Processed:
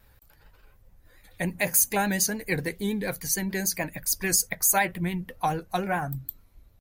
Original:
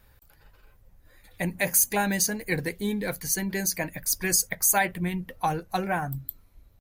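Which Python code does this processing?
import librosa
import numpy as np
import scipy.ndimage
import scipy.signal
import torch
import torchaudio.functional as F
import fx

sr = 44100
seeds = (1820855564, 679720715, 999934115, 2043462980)

y = fx.vibrato(x, sr, rate_hz=6.9, depth_cents=56.0)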